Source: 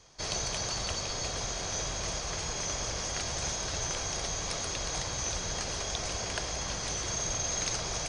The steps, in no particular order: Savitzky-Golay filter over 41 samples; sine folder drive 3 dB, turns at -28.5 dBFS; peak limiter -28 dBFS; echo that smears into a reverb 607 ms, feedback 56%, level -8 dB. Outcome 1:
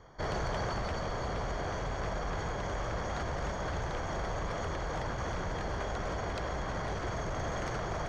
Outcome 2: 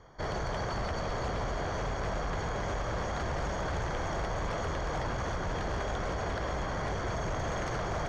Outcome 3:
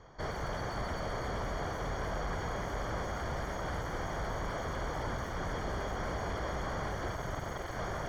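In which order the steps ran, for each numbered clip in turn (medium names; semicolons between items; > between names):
Savitzky-Golay filter > sine folder > echo that smears into a reverb > peak limiter; Savitzky-Golay filter > peak limiter > echo that smears into a reverb > sine folder; echo that smears into a reverb > sine folder > peak limiter > Savitzky-Golay filter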